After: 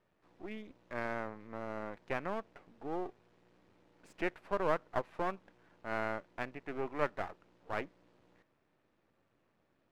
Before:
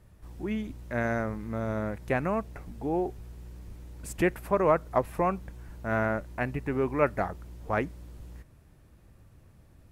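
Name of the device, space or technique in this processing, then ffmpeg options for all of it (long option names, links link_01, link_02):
crystal radio: -af "highpass=300,lowpass=3500,aeval=exprs='if(lt(val(0),0),0.251*val(0),val(0))':channel_layout=same,volume=-5.5dB"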